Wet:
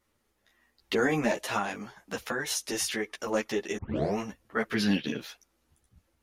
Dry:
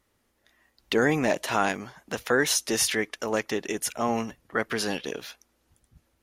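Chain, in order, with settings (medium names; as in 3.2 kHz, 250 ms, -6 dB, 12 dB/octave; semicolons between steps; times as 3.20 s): 1.57–3.20 s: compression 4:1, threshold -24 dBFS, peak gain reduction 6.5 dB; 3.77 s: tape start 0.40 s; 4.74–5.21 s: graphic EQ 125/250/500/1000/2000/4000/8000 Hz +10/+9/-4/-5/+5/+5/-10 dB; three-phase chorus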